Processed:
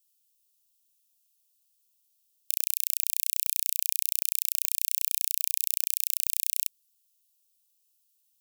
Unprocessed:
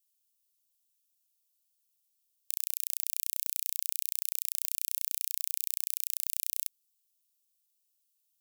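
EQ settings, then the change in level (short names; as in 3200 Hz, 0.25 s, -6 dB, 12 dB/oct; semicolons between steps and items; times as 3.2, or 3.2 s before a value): steep high-pass 2400 Hz 96 dB/oct; +5.5 dB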